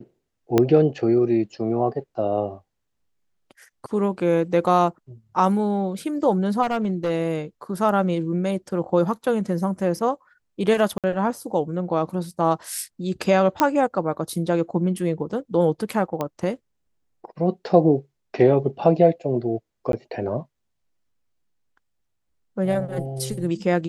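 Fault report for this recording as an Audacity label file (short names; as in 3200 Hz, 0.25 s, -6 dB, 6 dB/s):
0.580000	0.580000	pop -5 dBFS
6.620000	7.110000	clipped -18.5 dBFS
10.980000	11.040000	gap 57 ms
13.600000	13.600000	pop -4 dBFS
16.210000	16.210000	pop -13 dBFS
19.920000	19.930000	gap 12 ms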